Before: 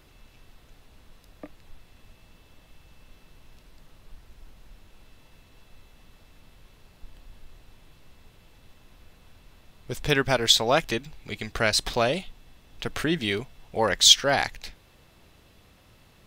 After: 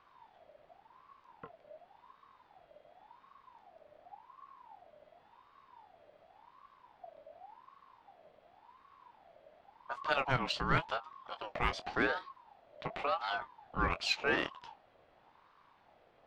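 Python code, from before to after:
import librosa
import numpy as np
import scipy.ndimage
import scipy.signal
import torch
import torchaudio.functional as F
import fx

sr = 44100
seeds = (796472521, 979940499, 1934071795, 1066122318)

y = scipy.signal.sosfilt(scipy.signal.butter(2, 2100.0, 'lowpass', fs=sr, output='sos'), x)
y = fx.cheby_harmonics(y, sr, harmonics=(8,), levels_db=(-35,), full_scale_db=-9.5)
y = fx.doubler(y, sr, ms=23.0, db=-10.5)
y = fx.ring_lfo(y, sr, carrier_hz=850.0, swing_pct=30, hz=0.9)
y = y * librosa.db_to_amplitude(-5.5)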